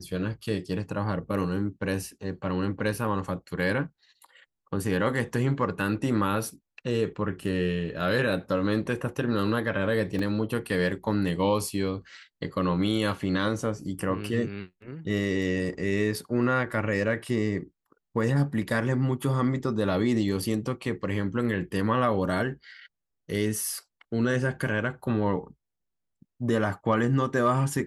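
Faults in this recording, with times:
10.19 gap 2.9 ms

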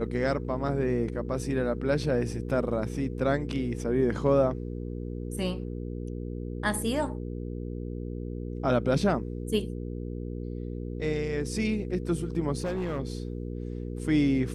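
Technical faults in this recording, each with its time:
hum 60 Hz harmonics 8 -35 dBFS
12.58–13 clipped -26.5 dBFS

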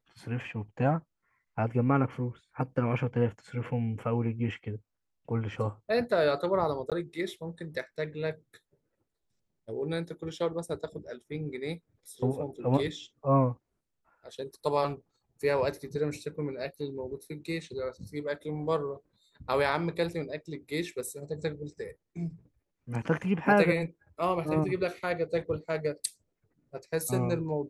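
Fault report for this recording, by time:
6.9–6.92 gap 17 ms

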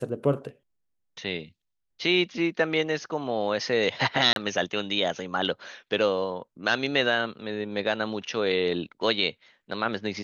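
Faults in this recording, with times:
4.33–4.36 gap 32 ms

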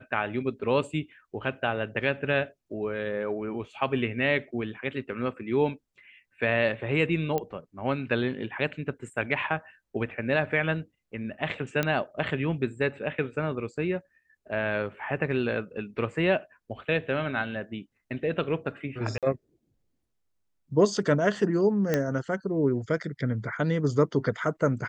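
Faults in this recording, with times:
7.38 pop -16 dBFS
11.83 pop -12 dBFS
19.18–19.23 gap 47 ms
21.94 pop -11 dBFS

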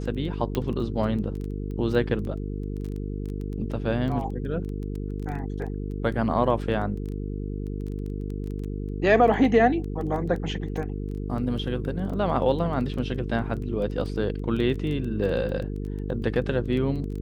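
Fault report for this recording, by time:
buzz 50 Hz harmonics 9 -31 dBFS
crackle 11/s -32 dBFS
0.55 pop -14 dBFS

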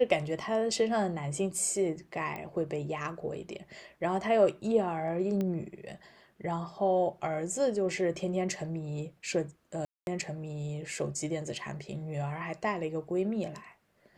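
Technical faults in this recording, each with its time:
2.36 pop -25 dBFS
5.41 pop -21 dBFS
9.85–10.07 gap 0.221 s

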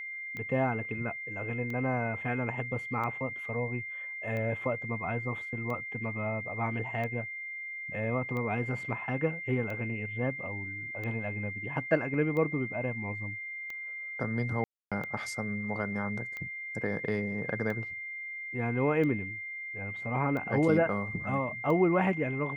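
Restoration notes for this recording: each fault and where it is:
tick 45 rpm -26 dBFS
tone 2100 Hz -37 dBFS
12.14 gap 3 ms
14.64–14.92 gap 0.276 s

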